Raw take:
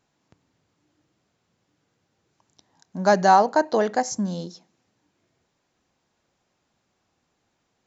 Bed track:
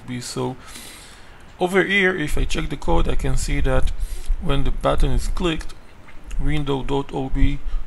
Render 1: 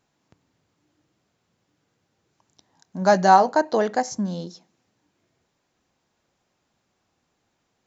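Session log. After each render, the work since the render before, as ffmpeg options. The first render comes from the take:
ffmpeg -i in.wav -filter_complex "[0:a]asettb=1/sr,asplit=3[link_01][link_02][link_03];[link_01]atrim=end=3.004[link_04];[link_02]atrim=start=3:end=3.52,asetpts=PTS-STARTPTS,afade=type=in:duration=0.004:curve=qsin,afade=type=out:start_time=0.516:duration=0.004:curve=qsin,asplit=2[link_05][link_06];[link_06]adelay=16,volume=-10dB[link_07];[link_05][link_07]amix=inputs=2:normalize=0,atrim=end_sample=22932[link_08];[link_03]atrim=start=3.516[link_09];[link_04][link_08]acrossfade=duration=0.004:curve1=hsin:curve2=qsin[link_10];[link_10][link_09]acrossfade=duration=0.004:curve1=qsin:curve2=hsin,asettb=1/sr,asplit=3[link_11][link_12][link_13];[link_11]atrim=end=4.064[link_14];[link_12]atrim=start=4.06:end=4.47,asetpts=PTS-STARTPTS,afade=type=in:duration=0.004:curve=qsin,afade=type=out:start_time=0.406:duration=0.004:curve=qsin,lowpass=5800[link_15];[link_13]atrim=start=4.466[link_16];[link_14][link_15]acrossfade=duration=0.004:curve1=hsin:curve2=qsin[link_17];[link_17][link_16]acrossfade=duration=0.004:curve1=qsin:curve2=hsin" out.wav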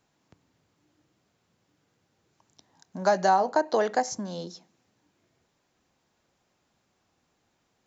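ffmpeg -i in.wav -filter_complex "[0:a]acrossover=split=340|840[link_01][link_02][link_03];[link_01]acompressor=threshold=-39dB:ratio=4[link_04];[link_02]acompressor=threshold=-22dB:ratio=4[link_05];[link_03]acompressor=threshold=-28dB:ratio=4[link_06];[link_04][link_05][link_06]amix=inputs=3:normalize=0" out.wav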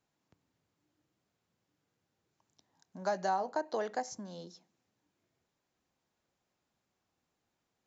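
ffmpeg -i in.wav -af "volume=-10.5dB" out.wav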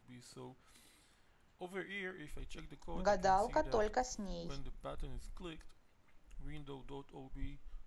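ffmpeg -i in.wav -i bed.wav -filter_complex "[1:a]volume=-27dB[link_01];[0:a][link_01]amix=inputs=2:normalize=0" out.wav

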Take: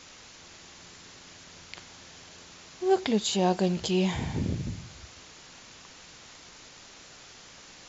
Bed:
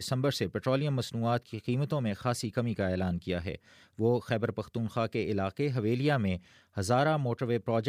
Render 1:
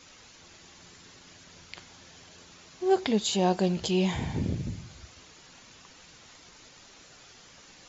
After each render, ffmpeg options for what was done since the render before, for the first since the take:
ffmpeg -i in.wav -af "afftdn=noise_reduction=6:noise_floor=-51" out.wav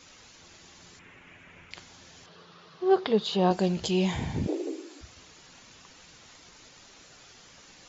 ffmpeg -i in.wav -filter_complex "[0:a]asettb=1/sr,asplit=3[link_01][link_02][link_03];[link_01]atrim=end=0.994[link_04];[link_02]atrim=start=0.99:end=1.71,asetpts=PTS-STARTPTS,afade=type=in:duration=0.004:curve=qsin,afade=type=out:start_time=0.716:duration=0.004:curve=qsin,highshelf=frequency=3300:width_type=q:width=3:gain=-11.5[link_05];[link_03]atrim=start=1.706[link_06];[link_04][link_05]acrossfade=duration=0.004:curve1=hsin:curve2=qsin[link_07];[link_07][link_06]acrossfade=duration=0.004:curve1=qsin:curve2=hsin,asettb=1/sr,asplit=3[link_08][link_09][link_10];[link_08]atrim=end=2.264[link_11];[link_09]atrim=start=2.26:end=3.51,asetpts=PTS-STARTPTS,afade=type=in:duration=0.004:curve=qsin,afade=type=out:start_time=1.246:duration=0.004:curve=qsin,highpass=140,equalizer=frequency=160:width_type=q:width=4:gain=8,equalizer=frequency=260:width_type=q:width=4:gain=-8,equalizer=frequency=450:width_type=q:width=4:gain=6,equalizer=frequency=1200:width_type=q:width=4:gain=8,equalizer=frequency=2300:width_type=q:width=4:gain=-6,lowpass=frequency=4500:width=0.5412,lowpass=frequency=4500:width=1.3066[link_12];[link_10]atrim=start=3.506[link_13];[link_11][link_12]acrossfade=duration=0.004:curve1=hsin:curve2=qsin[link_14];[link_14][link_13]acrossfade=duration=0.004:curve1=qsin:curve2=hsin,asettb=1/sr,asplit=3[link_15][link_16][link_17];[link_15]atrim=end=4.474[link_18];[link_16]atrim=start=4.47:end=5.01,asetpts=PTS-STARTPTS,afade=type=in:duration=0.004:curve=qsin,afade=type=out:start_time=0.536:duration=0.004:curve=qsin,afreqshift=220[link_19];[link_17]atrim=start=5.006[link_20];[link_18][link_19]acrossfade=duration=0.004:curve1=hsin:curve2=qsin[link_21];[link_21][link_20]acrossfade=duration=0.004:curve1=qsin:curve2=hsin" out.wav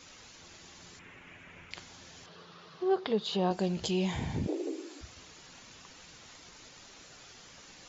ffmpeg -i in.wav -af "acompressor=threshold=-35dB:ratio=1.5" out.wav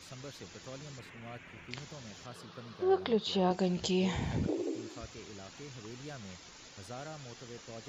ffmpeg -i in.wav -i bed.wav -filter_complex "[1:a]volume=-18.5dB[link_01];[0:a][link_01]amix=inputs=2:normalize=0" out.wav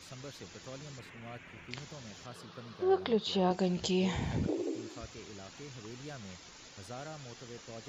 ffmpeg -i in.wav -af anull out.wav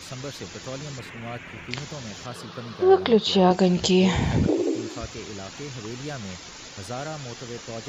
ffmpeg -i in.wav -af "volume=11.5dB" out.wav

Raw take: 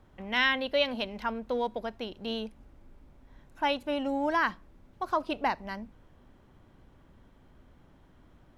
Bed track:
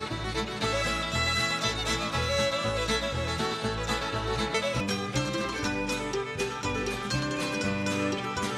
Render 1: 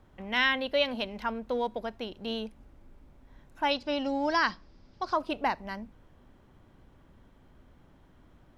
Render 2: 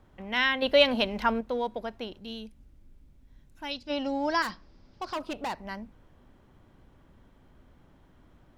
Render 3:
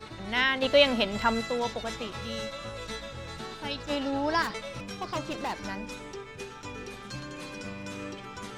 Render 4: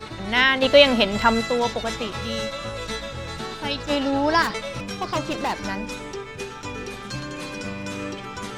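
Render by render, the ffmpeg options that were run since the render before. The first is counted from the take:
ffmpeg -i in.wav -filter_complex "[0:a]asettb=1/sr,asplit=3[link_01][link_02][link_03];[link_01]atrim=end=3.714[link_04];[link_02]atrim=start=3.71:end=5.13,asetpts=PTS-STARTPTS,afade=type=in:duration=0.004:curve=qsin,afade=type=out:start_time=1.416:duration=0.004:curve=qsin,lowpass=frequency=5000:width_type=q:width=6.9[link_05];[link_03]atrim=start=5.126[link_06];[link_04][link_05]acrossfade=duration=0.004:curve1=hsin:curve2=qsin[link_07];[link_07][link_06]acrossfade=duration=0.004:curve1=qsin:curve2=hsin" out.wav
ffmpeg -i in.wav -filter_complex "[0:a]asettb=1/sr,asplit=3[link_01][link_02][link_03];[link_01]atrim=end=0.624[link_04];[link_02]atrim=start=0.62:end=1.41,asetpts=PTS-STARTPTS,afade=type=in:duration=0.004:curve=qsin,afade=type=out:start_time=0.786:duration=0.004:curve=qsin,acontrast=72[link_05];[link_03]atrim=start=1.406[link_06];[link_04][link_05]acrossfade=duration=0.004:curve1=hsin:curve2=qsin[link_07];[link_07][link_06]acrossfade=duration=0.004:curve1=qsin:curve2=hsin,asplit=3[link_08][link_09][link_10];[link_08]afade=type=out:start_time=2.18:duration=0.02[link_11];[link_09]equalizer=frequency=860:width=0.43:gain=-13,afade=type=in:start_time=2.18:duration=0.02,afade=type=out:start_time=3.89:duration=0.02[link_12];[link_10]afade=type=in:start_time=3.89:duration=0.02[link_13];[link_11][link_12][link_13]amix=inputs=3:normalize=0,asettb=1/sr,asplit=3[link_14][link_15][link_16];[link_14]atrim=end=4.424[link_17];[link_15]atrim=start=4.42:end=5.63,asetpts=PTS-STARTPTS,afade=type=in:duration=0.004:curve=qsin,afade=type=out:start_time=1.206:duration=0.004:curve=qsin,asoftclip=type=hard:threshold=-29.5dB[link_18];[link_16]atrim=start=5.626[link_19];[link_17][link_18]acrossfade=duration=0.004:curve1=hsin:curve2=qsin[link_20];[link_20][link_19]acrossfade=duration=0.004:curve1=qsin:curve2=hsin" out.wav
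ffmpeg -i in.wav -i bed.wav -filter_complex "[1:a]volume=-10dB[link_01];[0:a][link_01]amix=inputs=2:normalize=0" out.wav
ffmpeg -i in.wav -af "volume=7.5dB,alimiter=limit=-1dB:level=0:latency=1" out.wav

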